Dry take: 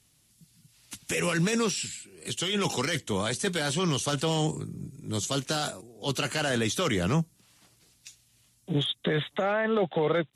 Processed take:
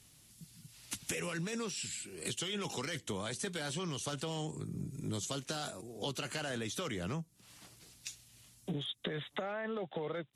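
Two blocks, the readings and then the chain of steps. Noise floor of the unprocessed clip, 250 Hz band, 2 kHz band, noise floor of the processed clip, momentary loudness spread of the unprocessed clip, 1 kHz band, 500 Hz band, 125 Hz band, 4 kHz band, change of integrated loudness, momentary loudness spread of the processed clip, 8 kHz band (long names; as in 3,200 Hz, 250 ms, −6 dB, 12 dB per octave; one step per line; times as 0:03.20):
−65 dBFS, −11.0 dB, −10.5 dB, −63 dBFS, 10 LU, −11.0 dB, −11.5 dB, −11.0 dB, −9.5 dB, −11.0 dB, 17 LU, −8.0 dB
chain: downward compressor 12 to 1, threshold −39 dBFS, peak gain reduction 18 dB
level +3.5 dB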